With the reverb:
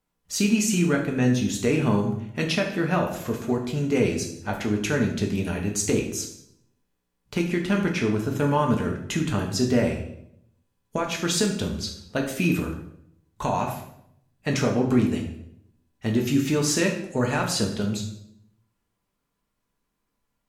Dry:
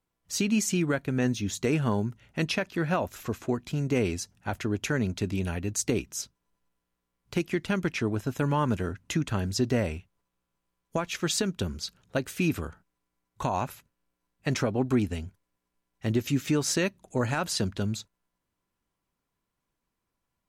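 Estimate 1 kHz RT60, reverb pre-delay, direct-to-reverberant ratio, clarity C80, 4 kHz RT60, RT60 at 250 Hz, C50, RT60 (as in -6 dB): 0.65 s, 4 ms, 1.0 dB, 10.0 dB, 0.60 s, 0.85 s, 7.0 dB, 0.75 s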